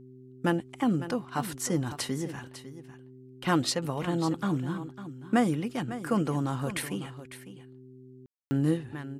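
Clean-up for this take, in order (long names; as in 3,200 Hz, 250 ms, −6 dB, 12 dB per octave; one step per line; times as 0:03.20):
hum removal 128.5 Hz, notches 3
ambience match 0:08.26–0:08.51
echo removal 551 ms −13 dB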